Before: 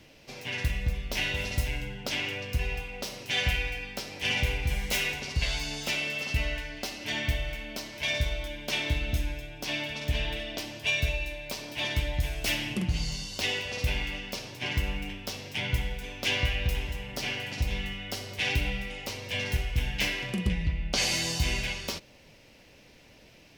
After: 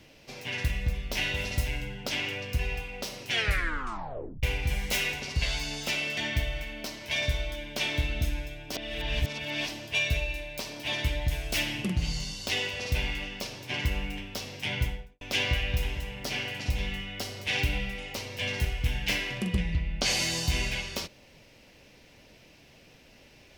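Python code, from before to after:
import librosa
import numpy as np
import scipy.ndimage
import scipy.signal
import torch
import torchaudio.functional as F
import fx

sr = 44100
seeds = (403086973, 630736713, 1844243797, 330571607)

y = fx.studio_fade_out(x, sr, start_s=15.7, length_s=0.43)
y = fx.edit(y, sr, fx.tape_stop(start_s=3.29, length_s=1.14),
    fx.cut(start_s=6.17, length_s=0.92),
    fx.reverse_span(start_s=9.65, length_s=0.96), tone=tone)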